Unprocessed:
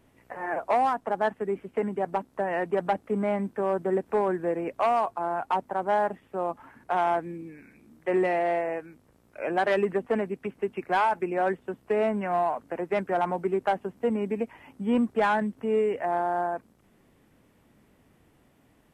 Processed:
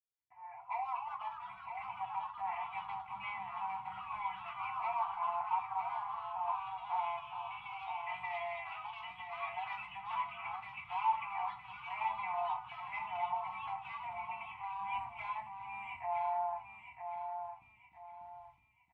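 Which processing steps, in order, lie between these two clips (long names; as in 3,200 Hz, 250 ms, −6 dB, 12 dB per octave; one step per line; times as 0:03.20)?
fade in at the beginning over 1.93 s
Chebyshev band-stop filter 130–760 Hz, order 4
brickwall limiter −26.5 dBFS, peak gain reduction 11 dB
comb filter 3 ms, depth 93%
noise gate with hold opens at −53 dBFS
formant filter u
repeating echo 963 ms, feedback 33%, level −6.5 dB
rectangular room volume 180 cubic metres, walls furnished, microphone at 1 metre
delay with pitch and tempo change per echo 318 ms, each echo +2 semitones, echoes 3, each echo −6 dB
low shelf with overshoot 250 Hz +10.5 dB, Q 1.5
level +7 dB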